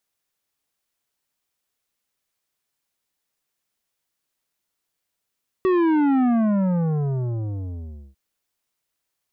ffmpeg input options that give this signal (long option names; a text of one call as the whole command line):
ffmpeg -f lavfi -i "aevalsrc='0.141*clip((2.5-t)/1.92,0,1)*tanh(3.55*sin(2*PI*380*2.5/log(65/380)*(exp(log(65/380)*t/2.5)-1)))/tanh(3.55)':duration=2.5:sample_rate=44100" out.wav